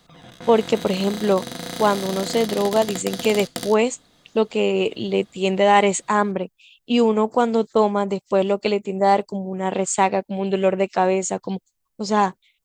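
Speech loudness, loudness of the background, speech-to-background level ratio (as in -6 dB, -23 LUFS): -21.0 LUFS, -31.5 LUFS, 10.5 dB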